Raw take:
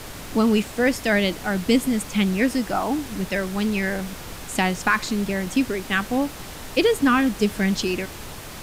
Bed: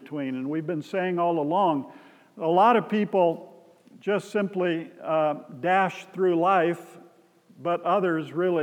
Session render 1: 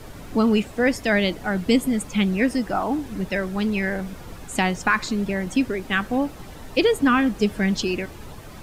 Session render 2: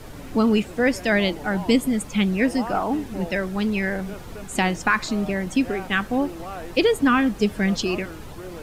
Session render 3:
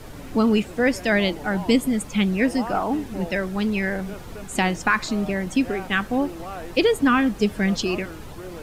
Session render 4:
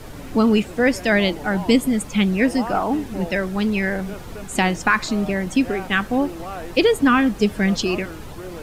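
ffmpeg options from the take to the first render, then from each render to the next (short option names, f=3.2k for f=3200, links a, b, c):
-af "afftdn=nr=10:nf=-37"
-filter_complex "[1:a]volume=-14.5dB[a];[0:a][a]amix=inputs=2:normalize=0"
-af anull
-af "volume=2.5dB"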